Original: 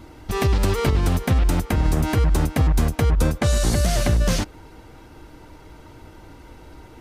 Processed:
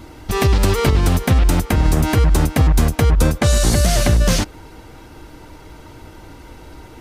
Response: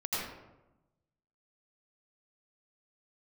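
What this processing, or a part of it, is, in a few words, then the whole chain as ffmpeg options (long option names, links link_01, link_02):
exciter from parts: -filter_complex "[0:a]asplit=2[link_01][link_02];[link_02]highpass=frequency=3500:poles=1,asoftclip=type=tanh:threshold=-25.5dB,volume=-7.5dB[link_03];[link_01][link_03]amix=inputs=2:normalize=0,volume=4.5dB"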